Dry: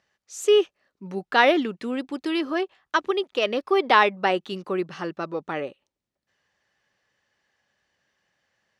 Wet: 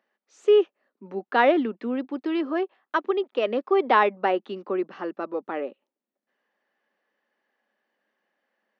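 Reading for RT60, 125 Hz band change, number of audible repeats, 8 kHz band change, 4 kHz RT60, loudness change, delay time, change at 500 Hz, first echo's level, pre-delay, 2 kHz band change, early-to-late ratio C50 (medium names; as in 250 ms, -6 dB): no reverb, no reading, no echo, no reading, no reverb, -1.0 dB, no echo, +0.5 dB, no echo, no reverb, -4.5 dB, no reverb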